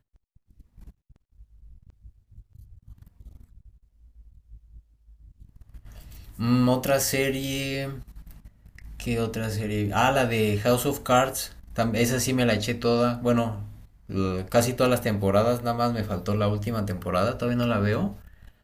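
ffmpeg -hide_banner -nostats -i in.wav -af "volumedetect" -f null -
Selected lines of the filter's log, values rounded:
mean_volume: -26.9 dB
max_volume: -7.4 dB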